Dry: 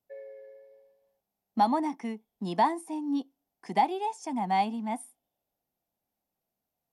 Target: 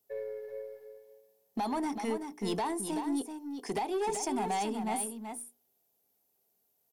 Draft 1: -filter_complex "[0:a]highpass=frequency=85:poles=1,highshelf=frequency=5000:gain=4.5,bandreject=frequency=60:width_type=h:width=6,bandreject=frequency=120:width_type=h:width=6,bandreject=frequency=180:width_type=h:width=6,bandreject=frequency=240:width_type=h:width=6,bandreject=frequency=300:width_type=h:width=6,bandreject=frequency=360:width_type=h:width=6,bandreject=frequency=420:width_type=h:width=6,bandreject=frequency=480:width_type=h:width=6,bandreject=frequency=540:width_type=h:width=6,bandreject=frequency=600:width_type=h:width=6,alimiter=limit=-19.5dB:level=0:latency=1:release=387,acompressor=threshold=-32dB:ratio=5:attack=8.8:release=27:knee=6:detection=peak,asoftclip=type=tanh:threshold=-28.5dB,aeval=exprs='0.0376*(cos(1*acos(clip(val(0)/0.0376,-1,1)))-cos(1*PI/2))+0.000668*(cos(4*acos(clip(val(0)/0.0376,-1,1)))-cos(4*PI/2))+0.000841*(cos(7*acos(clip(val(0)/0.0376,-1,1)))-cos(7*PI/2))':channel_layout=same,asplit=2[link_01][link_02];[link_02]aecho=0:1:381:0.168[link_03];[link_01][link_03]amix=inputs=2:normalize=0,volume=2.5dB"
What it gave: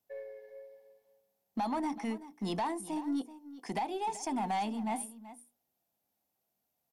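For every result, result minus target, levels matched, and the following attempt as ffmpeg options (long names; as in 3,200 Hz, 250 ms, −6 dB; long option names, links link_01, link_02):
8,000 Hz band −5.5 dB; echo-to-direct −8 dB; 500 Hz band −4.5 dB
-filter_complex "[0:a]highpass=frequency=85:poles=1,highshelf=frequency=5000:gain=14,bandreject=frequency=60:width_type=h:width=6,bandreject=frequency=120:width_type=h:width=6,bandreject=frequency=180:width_type=h:width=6,bandreject=frequency=240:width_type=h:width=6,bandreject=frequency=300:width_type=h:width=6,bandreject=frequency=360:width_type=h:width=6,bandreject=frequency=420:width_type=h:width=6,bandreject=frequency=480:width_type=h:width=6,bandreject=frequency=540:width_type=h:width=6,bandreject=frequency=600:width_type=h:width=6,alimiter=limit=-19.5dB:level=0:latency=1:release=387,acompressor=threshold=-32dB:ratio=5:attack=8.8:release=27:knee=6:detection=peak,asoftclip=type=tanh:threshold=-28.5dB,aeval=exprs='0.0376*(cos(1*acos(clip(val(0)/0.0376,-1,1)))-cos(1*PI/2))+0.000668*(cos(4*acos(clip(val(0)/0.0376,-1,1)))-cos(4*PI/2))+0.000841*(cos(7*acos(clip(val(0)/0.0376,-1,1)))-cos(7*PI/2))':channel_layout=same,asplit=2[link_01][link_02];[link_02]aecho=0:1:381:0.422[link_03];[link_01][link_03]amix=inputs=2:normalize=0,volume=2.5dB"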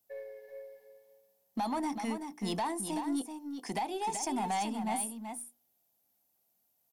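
500 Hz band −4.5 dB
-filter_complex "[0:a]highpass=frequency=85:poles=1,highshelf=frequency=5000:gain=14,bandreject=frequency=60:width_type=h:width=6,bandreject=frequency=120:width_type=h:width=6,bandreject=frequency=180:width_type=h:width=6,bandreject=frequency=240:width_type=h:width=6,bandreject=frequency=300:width_type=h:width=6,bandreject=frequency=360:width_type=h:width=6,bandreject=frequency=420:width_type=h:width=6,bandreject=frequency=480:width_type=h:width=6,bandreject=frequency=540:width_type=h:width=6,bandreject=frequency=600:width_type=h:width=6,alimiter=limit=-19.5dB:level=0:latency=1:release=387,acompressor=threshold=-32dB:ratio=5:attack=8.8:release=27:knee=6:detection=peak,equalizer=frequency=420:width=4.5:gain=13.5,asoftclip=type=tanh:threshold=-28.5dB,aeval=exprs='0.0376*(cos(1*acos(clip(val(0)/0.0376,-1,1)))-cos(1*PI/2))+0.000668*(cos(4*acos(clip(val(0)/0.0376,-1,1)))-cos(4*PI/2))+0.000841*(cos(7*acos(clip(val(0)/0.0376,-1,1)))-cos(7*PI/2))':channel_layout=same,asplit=2[link_01][link_02];[link_02]aecho=0:1:381:0.422[link_03];[link_01][link_03]amix=inputs=2:normalize=0,volume=2.5dB"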